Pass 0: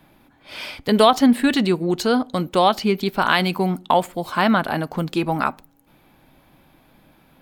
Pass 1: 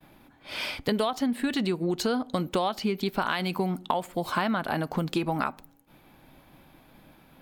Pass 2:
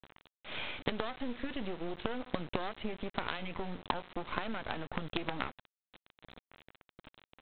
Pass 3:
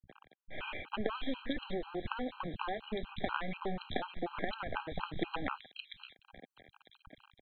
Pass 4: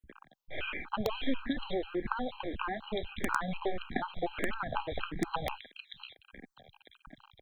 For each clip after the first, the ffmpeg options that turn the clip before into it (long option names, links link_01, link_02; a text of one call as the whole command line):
ffmpeg -i in.wav -af "acompressor=threshold=-23dB:ratio=12,agate=range=-33dB:threshold=-53dB:ratio=3:detection=peak" out.wav
ffmpeg -i in.wav -af "acompressor=threshold=-34dB:ratio=3,aresample=8000,acrusher=bits=5:dc=4:mix=0:aa=0.000001,aresample=44100,volume=1dB" out.wav
ffmpeg -i in.wav -filter_complex "[0:a]acrossover=split=160|3000[link_01][link_02][link_03];[link_02]adelay=60[link_04];[link_03]adelay=630[link_05];[link_01][link_04][link_05]amix=inputs=3:normalize=0,afftfilt=real='re*gt(sin(2*PI*4.1*pts/sr)*(1-2*mod(floor(b*sr/1024/800),2)),0)':imag='im*gt(sin(2*PI*4.1*pts/sr)*(1-2*mod(floor(b*sr/1024/800),2)),0)':win_size=1024:overlap=0.75,volume=4dB" out.wav
ffmpeg -i in.wav -filter_complex "[0:a]asplit=2[link_01][link_02];[link_02]aeval=exprs='(mod(8.91*val(0)+1,2)-1)/8.91':channel_layout=same,volume=-3.5dB[link_03];[link_01][link_03]amix=inputs=2:normalize=0,asplit=2[link_04][link_05];[link_05]afreqshift=-1.6[link_06];[link_04][link_06]amix=inputs=2:normalize=1,volume=2dB" out.wav